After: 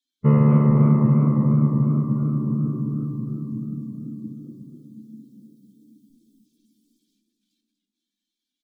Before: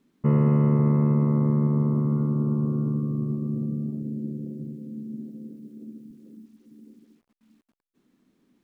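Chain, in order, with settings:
spectral dynamics exaggerated over time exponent 2
slap from a distant wall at 140 metres, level −16 dB
on a send at −6 dB: convolution reverb RT60 0.40 s, pre-delay 7 ms
on the sum: feedback echo with a swinging delay time 248 ms, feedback 55%, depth 168 cents, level −9 dB
level +5.5 dB

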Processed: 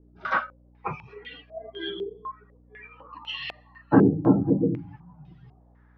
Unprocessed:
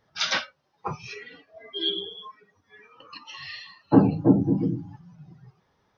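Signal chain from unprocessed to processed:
mains hum 60 Hz, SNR 28 dB
low-pass on a step sequencer 4 Hz 380–3,100 Hz
level −1.5 dB

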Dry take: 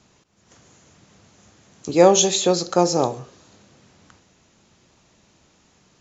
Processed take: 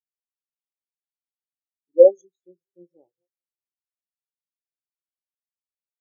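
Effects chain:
feedback delay that plays each chunk backwards 302 ms, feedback 44%, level −12.5 dB
0:02.10–0:02.95: parametric band 940 Hz −13 dB 1.4 octaves
every bin expanded away from the loudest bin 4 to 1

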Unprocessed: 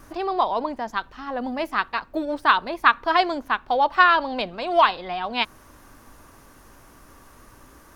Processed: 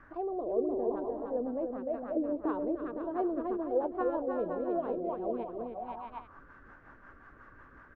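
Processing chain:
bouncing-ball delay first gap 300 ms, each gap 0.7×, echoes 5
rotating-speaker cabinet horn 0.65 Hz, later 5.5 Hz, at 0:02.43
envelope-controlled low-pass 450–1,800 Hz down, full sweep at −25.5 dBFS
level −8 dB

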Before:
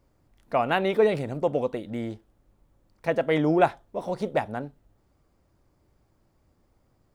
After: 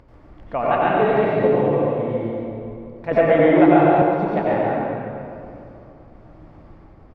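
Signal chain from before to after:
low-pass filter 2,400 Hz 12 dB per octave
upward compression, threshold −38 dBFS
square-wave tremolo 1 Hz, depth 60%, duty 75%
single-tap delay 142 ms −6 dB
convolution reverb RT60 2.7 s, pre-delay 83 ms, DRR −7 dB
0:03.11–0:04.02: multiband upward and downward compressor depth 70%
level −1 dB

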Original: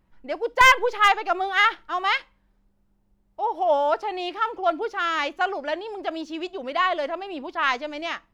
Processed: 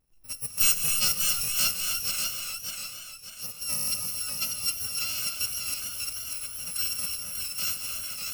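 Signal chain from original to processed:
samples in bit-reversed order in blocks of 128 samples
0:02.11–0:03.73: bass and treble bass −5 dB, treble −5 dB
reverb whose tail is shaped and stops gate 310 ms rising, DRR 4.5 dB
feedback echo with a swinging delay time 593 ms, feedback 42%, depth 64 cents, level −4.5 dB
level −8 dB

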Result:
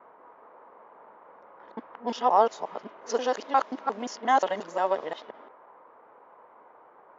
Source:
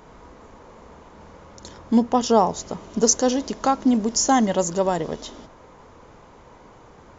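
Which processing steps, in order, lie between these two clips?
reversed piece by piece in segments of 177 ms
band-pass filter 670–2,700 Hz
low-pass that shuts in the quiet parts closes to 1,100 Hz, open at −24 dBFS

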